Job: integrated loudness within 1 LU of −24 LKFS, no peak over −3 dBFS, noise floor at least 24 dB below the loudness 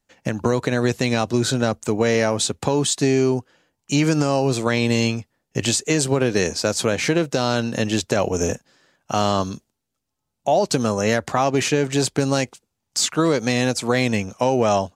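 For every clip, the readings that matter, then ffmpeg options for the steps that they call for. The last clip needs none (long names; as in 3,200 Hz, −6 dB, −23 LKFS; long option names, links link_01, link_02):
integrated loudness −21.0 LKFS; sample peak −6.0 dBFS; target loudness −24.0 LKFS
→ -af "volume=-3dB"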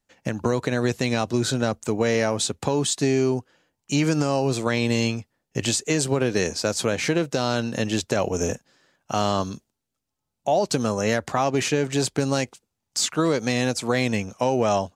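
integrated loudness −24.0 LKFS; sample peak −9.0 dBFS; background noise floor −82 dBFS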